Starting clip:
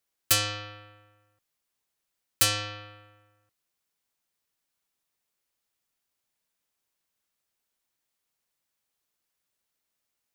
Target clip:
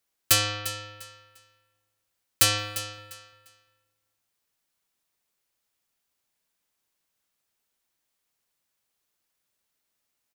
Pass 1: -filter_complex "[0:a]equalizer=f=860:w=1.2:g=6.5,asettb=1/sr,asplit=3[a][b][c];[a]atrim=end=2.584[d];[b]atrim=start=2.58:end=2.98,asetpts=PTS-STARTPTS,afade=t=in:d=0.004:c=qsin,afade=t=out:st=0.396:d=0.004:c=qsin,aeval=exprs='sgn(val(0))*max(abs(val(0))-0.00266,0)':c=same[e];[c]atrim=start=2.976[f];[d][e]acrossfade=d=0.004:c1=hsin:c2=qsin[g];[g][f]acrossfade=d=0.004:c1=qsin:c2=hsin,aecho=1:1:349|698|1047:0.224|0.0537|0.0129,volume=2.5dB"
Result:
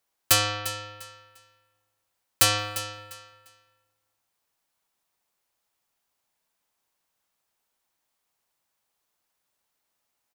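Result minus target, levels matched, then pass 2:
1000 Hz band +3.5 dB
-filter_complex "[0:a]asettb=1/sr,asplit=3[a][b][c];[a]atrim=end=2.584[d];[b]atrim=start=2.58:end=2.98,asetpts=PTS-STARTPTS,afade=t=in:d=0.004:c=qsin,afade=t=out:st=0.396:d=0.004:c=qsin,aeval=exprs='sgn(val(0))*max(abs(val(0))-0.00266,0)':c=same[e];[c]atrim=start=2.976[f];[d][e]acrossfade=d=0.004:c1=hsin:c2=qsin[g];[g][f]acrossfade=d=0.004:c1=qsin:c2=hsin,aecho=1:1:349|698|1047:0.224|0.0537|0.0129,volume=2.5dB"

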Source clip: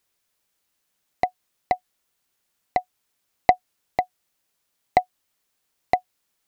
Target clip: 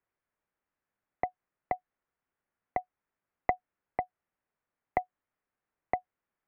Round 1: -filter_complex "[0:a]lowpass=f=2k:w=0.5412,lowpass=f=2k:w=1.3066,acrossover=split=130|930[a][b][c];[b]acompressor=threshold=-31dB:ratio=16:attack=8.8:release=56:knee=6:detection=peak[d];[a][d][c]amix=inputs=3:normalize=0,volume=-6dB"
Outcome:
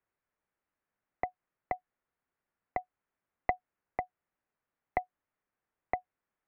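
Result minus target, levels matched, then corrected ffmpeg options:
compressor: peak gain reduction +6 dB
-filter_complex "[0:a]lowpass=f=2k:w=0.5412,lowpass=f=2k:w=1.3066,acrossover=split=130|930[a][b][c];[b]acompressor=threshold=-24.5dB:ratio=16:attack=8.8:release=56:knee=6:detection=peak[d];[a][d][c]amix=inputs=3:normalize=0,volume=-6dB"

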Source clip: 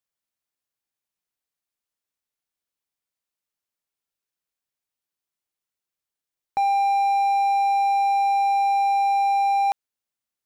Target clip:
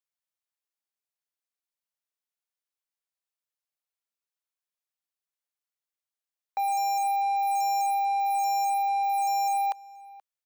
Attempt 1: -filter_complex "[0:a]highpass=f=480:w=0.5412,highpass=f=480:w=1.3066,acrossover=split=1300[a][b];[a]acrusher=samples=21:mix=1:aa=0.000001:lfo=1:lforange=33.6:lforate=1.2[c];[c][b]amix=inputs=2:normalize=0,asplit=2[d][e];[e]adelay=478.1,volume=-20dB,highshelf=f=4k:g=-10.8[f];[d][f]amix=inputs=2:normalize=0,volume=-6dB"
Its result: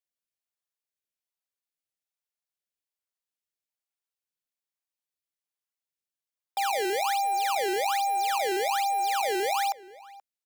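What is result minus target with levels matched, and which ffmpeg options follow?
decimation with a swept rate: distortion +20 dB
-filter_complex "[0:a]highpass=f=480:w=0.5412,highpass=f=480:w=1.3066,acrossover=split=1300[a][b];[a]acrusher=samples=4:mix=1:aa=0.000001:lfo=1:lforange=6.4:lforate=1.2[c];[c][b]amix=inputs=2:normalize=0,asplit=2[d][e];[e]adelay=478.1,volume=-20dB,highshelf=f=4k:g=-10.8[f];[d][f]amix=inputs=2:normalize=0,volume=-6dB"

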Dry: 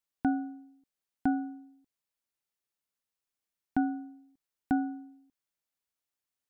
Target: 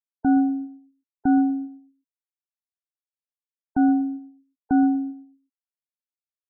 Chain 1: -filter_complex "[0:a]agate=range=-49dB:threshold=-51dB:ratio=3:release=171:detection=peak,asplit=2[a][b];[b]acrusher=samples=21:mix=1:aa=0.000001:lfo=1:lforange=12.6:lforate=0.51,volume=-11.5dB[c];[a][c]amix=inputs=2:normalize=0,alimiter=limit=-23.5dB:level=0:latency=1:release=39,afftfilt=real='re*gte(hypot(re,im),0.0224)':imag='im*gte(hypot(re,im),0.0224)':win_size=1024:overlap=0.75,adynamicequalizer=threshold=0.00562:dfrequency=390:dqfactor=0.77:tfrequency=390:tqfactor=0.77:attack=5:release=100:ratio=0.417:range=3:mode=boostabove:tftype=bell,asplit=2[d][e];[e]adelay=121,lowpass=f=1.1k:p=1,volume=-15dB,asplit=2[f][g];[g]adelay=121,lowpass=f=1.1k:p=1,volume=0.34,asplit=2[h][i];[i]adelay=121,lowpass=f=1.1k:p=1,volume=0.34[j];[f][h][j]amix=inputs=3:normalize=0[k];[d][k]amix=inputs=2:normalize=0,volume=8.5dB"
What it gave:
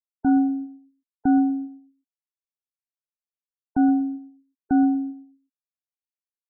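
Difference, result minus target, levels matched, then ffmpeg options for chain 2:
decimation with a swept rate: distortion +14 dB
-filter_complex "[0:a]agate=range=-49dB:threshold=-51dB:ratio=3:release=171:detection=peak,asplit=2[a][b];[b]acrusher=samples=5:mix=1:aa=0.000001:lfo=1:lforange=3:lforate=0.51,volume=-11.5dB[c];[a][c]amix=inputs=2:normalize=0,alimiter=limit=-23.5dB:level=0:latency=1:release=39,afftfilt=real='re*gte(hypot(re,im),0.0224)':imag='im*gte(hypot(re,im),0.0224)':win_size=1024:overlap=0.75,adynamicequalizer=threshold=0.00562:dfrequency=390:dqfactor=0.77:tfrequency=390:tqfactor=0.77:attack=5:release=100:ratio=0.417:range=3:mode=boostabove:tftype=bell,asplit=2[d][e];[e]adelay=121,lowpass=f=1.1k:p=1,volume=-15dB,asplit=2[f][g];[g]adelay=121,lowpass=f=1.1k:p=1,volume=0.34,asplit=2[h][i];[i]adelay=121,lowpass=f=1.1k:p=1,volume=0.34[j];[f][h][j]amix=inputs=3:normalize=0[k];[d][k]amix=inputs=2:normalize=0,volume=8.5dB"

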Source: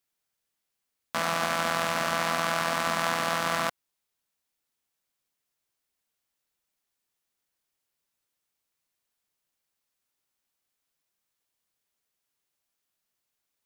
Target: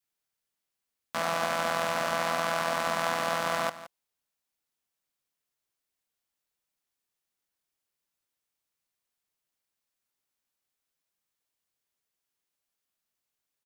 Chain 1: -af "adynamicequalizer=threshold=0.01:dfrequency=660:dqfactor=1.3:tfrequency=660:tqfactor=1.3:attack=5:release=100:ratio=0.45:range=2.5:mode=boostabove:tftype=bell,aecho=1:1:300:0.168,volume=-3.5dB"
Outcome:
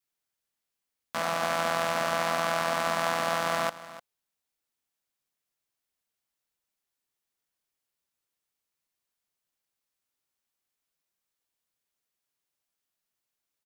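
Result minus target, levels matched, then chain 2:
echo 0.13 s late
-af "adynamicequalizer=threshold=0.01:dfrequency=660:dqfactor=1.3:tfrequency=660:tqfactor=1.3:attack=5:release=100:ratio=0.45:range=2.5:mode=boostabove:tftype=bell,aecho=1:1:170:0.168,volume=-3.5dB"

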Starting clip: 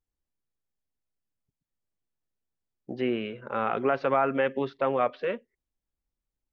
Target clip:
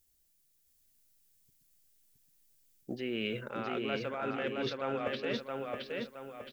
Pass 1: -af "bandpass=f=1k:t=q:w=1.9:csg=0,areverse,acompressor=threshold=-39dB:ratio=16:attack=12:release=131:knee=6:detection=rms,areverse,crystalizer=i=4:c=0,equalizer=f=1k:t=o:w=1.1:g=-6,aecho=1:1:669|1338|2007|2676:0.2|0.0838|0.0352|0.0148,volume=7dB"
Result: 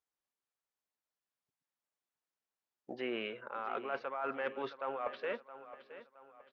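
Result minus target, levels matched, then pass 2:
echo-to-direct -11.5 dB; 1000 Hz band +3.5 dB
-af "areverse,acompressor=threshold=-39dB:ratio=16:attack=12:release=131:knee=6:detection=rms,areverse,crystalizer=i=4:c=0,equalizer=f=1k:t=o:w=1.1:g=-6,aecho=1:1:669|1338|2007|2676|3345:0.75|0.315|0.132|0.0556|0.0233,volume=7dB"

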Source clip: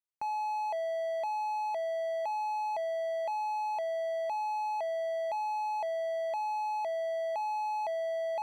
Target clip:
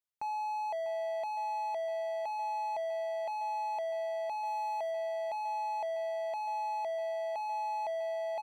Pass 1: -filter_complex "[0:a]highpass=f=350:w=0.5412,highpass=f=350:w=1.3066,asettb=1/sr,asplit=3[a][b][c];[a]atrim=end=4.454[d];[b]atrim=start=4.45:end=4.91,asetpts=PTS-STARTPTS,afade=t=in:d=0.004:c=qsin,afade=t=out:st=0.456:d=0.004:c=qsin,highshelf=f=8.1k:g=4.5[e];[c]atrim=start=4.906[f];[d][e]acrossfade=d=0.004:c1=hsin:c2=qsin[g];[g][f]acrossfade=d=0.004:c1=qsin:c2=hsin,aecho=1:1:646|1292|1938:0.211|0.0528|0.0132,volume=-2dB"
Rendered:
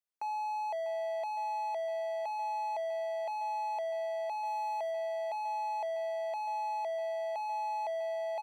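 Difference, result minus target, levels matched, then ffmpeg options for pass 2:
250 Hz band -6.0 dB
-filter_complex "[0:a]asettb=1/sr,asplit=3[a][b][c];[a]atrim=end=4.454[d];[b]atrim=start=4.45:end=4.91,asetpts=PTS-STARTPTS,afade=t=in:d=0.004:c=qsin,afade=t=out:st=0.456:d=0.004:c=qsin,highshelf=f=8.1k:g=4.5[e];[c]atrim=start=4.906[f];[d][e]acrossfade=d=0.004:c1=hsin:c2=qsin[g];[g][f]acrossfade=d=0.004:c1=qsin:c2=hsin,aecho=1:1:646|1292|1938:0.211|0.0528|0.0132,volume=-2dB"

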